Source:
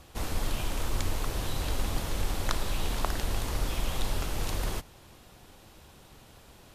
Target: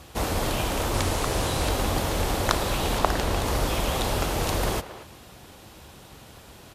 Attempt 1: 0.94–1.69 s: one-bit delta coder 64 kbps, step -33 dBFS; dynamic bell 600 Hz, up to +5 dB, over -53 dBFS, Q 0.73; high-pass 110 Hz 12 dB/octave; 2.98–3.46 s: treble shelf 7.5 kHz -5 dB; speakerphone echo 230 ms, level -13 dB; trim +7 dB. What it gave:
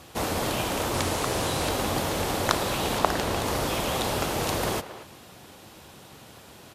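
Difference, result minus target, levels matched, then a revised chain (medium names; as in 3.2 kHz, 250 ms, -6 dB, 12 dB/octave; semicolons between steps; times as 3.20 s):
125 Hz band -3.5 dB
0.94–1.69 s: one-bit delta coder 64 kbps, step -33 dBFS; dynamic bell 600 Hz, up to +5 dB, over -53 dBFS, Q 0.73; high-pass 48 Hz 12 dB/octave; 2.98–3.46 s: treble shelf 7.5 kHz -5 dB; speakerphone echo 230 ms, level -13 dB; trim +7 dB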